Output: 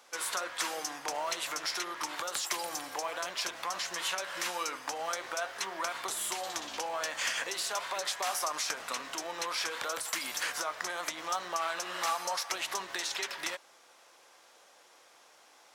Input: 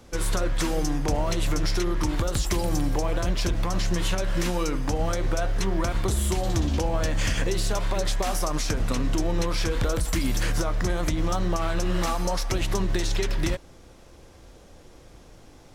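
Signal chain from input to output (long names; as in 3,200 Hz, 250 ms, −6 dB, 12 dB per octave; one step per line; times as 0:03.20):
Chebyshev high-pass filter 970 Hz, order 2
level −1 dB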